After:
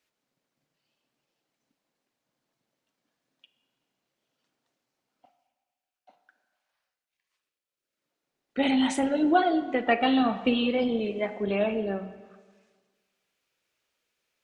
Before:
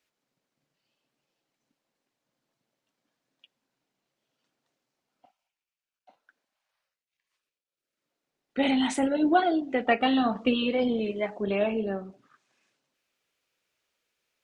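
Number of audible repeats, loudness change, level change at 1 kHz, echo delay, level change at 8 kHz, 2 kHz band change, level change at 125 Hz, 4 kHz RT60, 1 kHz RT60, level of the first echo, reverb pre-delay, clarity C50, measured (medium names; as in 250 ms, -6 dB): no echo, +0.5 dB, +0.5 dB, no echo, 0.0 dB, +0.5 dB, no reading, 1.4 s, 1.5 s, no echo, 30 ms, 12.0 dB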